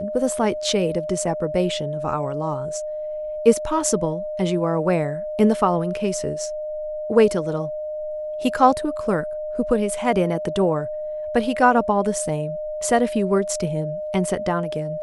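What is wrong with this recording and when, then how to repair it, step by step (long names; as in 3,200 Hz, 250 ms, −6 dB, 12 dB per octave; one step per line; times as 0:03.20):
whistle 610 Hz −26 dBFS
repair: notch filter 610 Hz, Q 30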